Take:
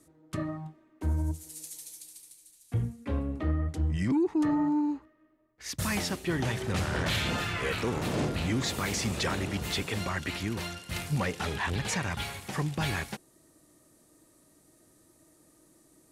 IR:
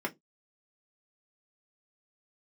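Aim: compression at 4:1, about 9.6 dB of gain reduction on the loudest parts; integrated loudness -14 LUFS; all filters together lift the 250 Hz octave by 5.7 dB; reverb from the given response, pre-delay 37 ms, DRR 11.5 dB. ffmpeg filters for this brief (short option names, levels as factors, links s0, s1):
-filter_complex "[0:a]equalizer=f=250:t=o:g=7.5,acompressor=threshold=0.0316:ratio=4,asplit=2[s0][s1];[1:a]atrim=start_sample=2205,adelay=37[s2];[s1][s2]afir=irnorm=-1:irlink=0,volume=0.141[s3];[s0][s3]amix=inputs=2:normalize=0,volume=10"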